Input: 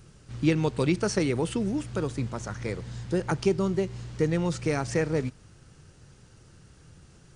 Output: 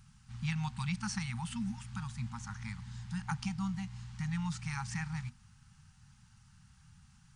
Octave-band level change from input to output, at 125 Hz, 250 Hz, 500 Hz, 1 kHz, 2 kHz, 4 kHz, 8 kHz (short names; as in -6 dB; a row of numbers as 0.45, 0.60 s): -7.0 dB, -10.5 dB, under -40 dB, -7.5 dB, -7.0 dB, -7.0 dB, -7.0 dB